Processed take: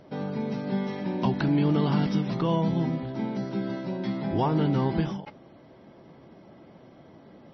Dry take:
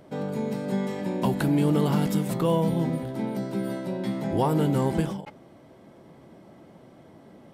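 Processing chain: dynamic bell 510 Hz, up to -6 dB, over -44 dBFS, Q 3.7; MP3 24 kbps 24 kHz

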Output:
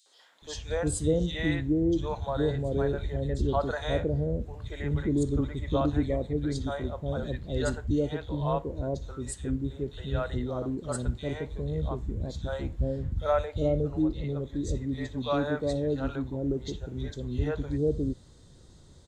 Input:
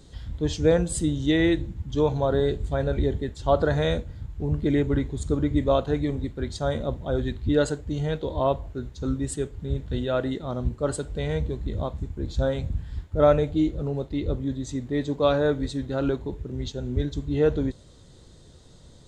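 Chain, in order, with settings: three bands offset in time highs, mids, lows 60/420 ms, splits 550/2900 Hz; trim -3 dB

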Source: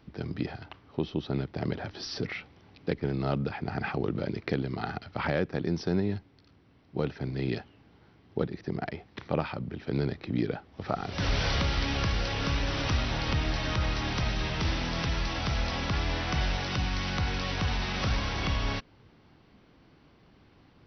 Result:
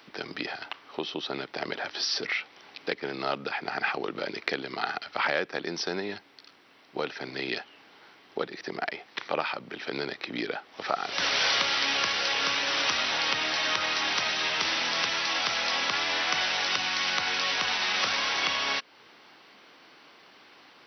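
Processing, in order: high-pass 320 Hz 12 dB/octave; tilt shelf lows -7 dB, about 680 Hz; in parallel at +2.5 dB: compression, threshold -41 dBFS, peak gain reduction 17 dB

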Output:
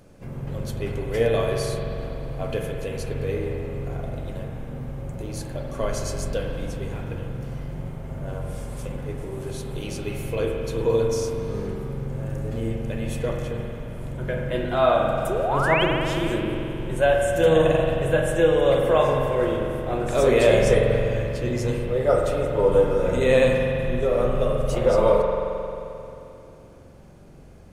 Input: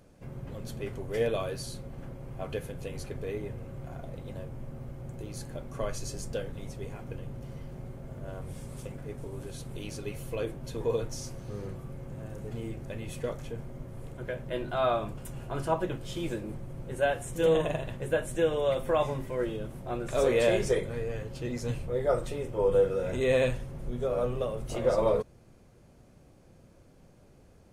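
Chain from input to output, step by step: painted sound rise, 15.29–15.84 s, 340–3400 Hz -32 dBFS; spring tank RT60 2.9 s, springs 44 ms, chirp 65 ms, DRR 1 dB; trim +6 dB

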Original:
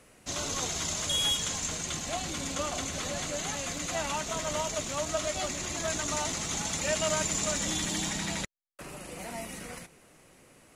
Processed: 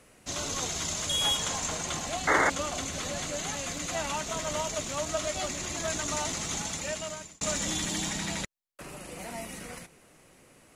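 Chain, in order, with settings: 1.21–2.08 s: peaking EQ 830 Hz +7.5 dB 1.6 oct; 2.27–2.50 s: painted sound noise 260–2200 Hz -23 dBFS; 6.53–7.41 s: fade out

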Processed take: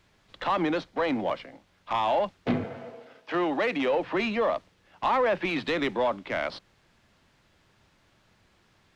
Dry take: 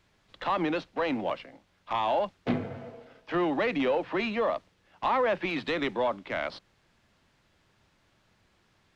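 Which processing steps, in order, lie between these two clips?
0.62–1.44 s: band-stop 2.7 kHz, Q 9.9; 2.64–3.93 s: high-pass 280 Hz 6 dB/octave; in parallel at -7 dB: saturation -28 dBFS, distortion -10 dB

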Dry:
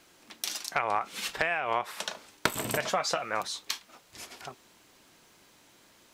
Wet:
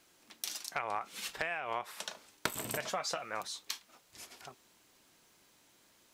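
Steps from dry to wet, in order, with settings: treble shelf 5.6 kHz +5 dB; trim -8 dB

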